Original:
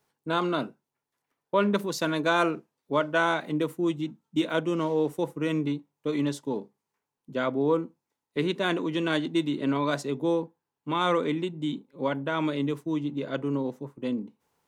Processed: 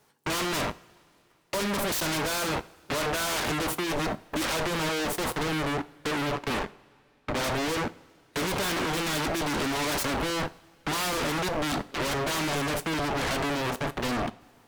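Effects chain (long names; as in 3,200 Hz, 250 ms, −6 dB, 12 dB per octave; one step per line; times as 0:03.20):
0:05.43–0:07.44: low-pass filter 1,300 Hz 24 dB per octave
leveller curve on the samples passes 5
brickwall limiter −24.5 dBFS, peak gain reduction 13.5 dB
downward compressor 4 to 1, threshold −35 dBFS, peak gain reduction 7.5 dB
sine wavefolder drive 16 dB, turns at −24.5 dBFS
coupled-rooms reverb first 0.38 s, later 2.8 s, from −19 dB, DRR 13.5 dB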